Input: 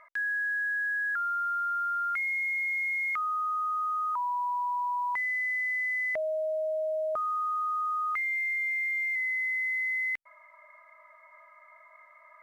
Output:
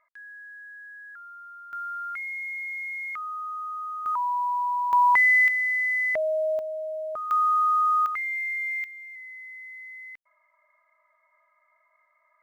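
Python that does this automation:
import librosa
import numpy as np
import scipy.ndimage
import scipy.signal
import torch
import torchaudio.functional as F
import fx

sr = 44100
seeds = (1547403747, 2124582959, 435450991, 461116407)

y = fx.gain(x, sr, db=fx.steps((0.0, -14.0), (1.73, -3.5), (4.06, 4.0), (4.93, 12.0), (5.48, 5.0), (6.59, -2.0), (7.31, 8.5), (8.06, 0.5), (8.84, -12.0)))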